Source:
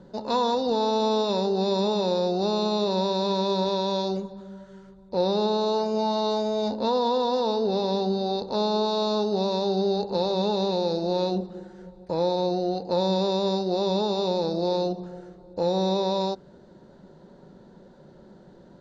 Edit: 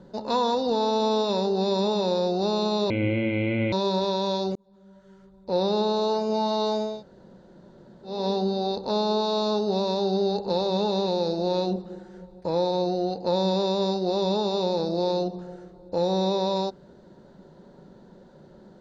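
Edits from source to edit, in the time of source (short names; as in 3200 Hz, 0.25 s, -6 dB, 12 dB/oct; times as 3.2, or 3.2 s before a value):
2.9–3.37 speed 57%
4.2–5.27 fade in
6.56–7.79 room tone, crossfade 0.24 s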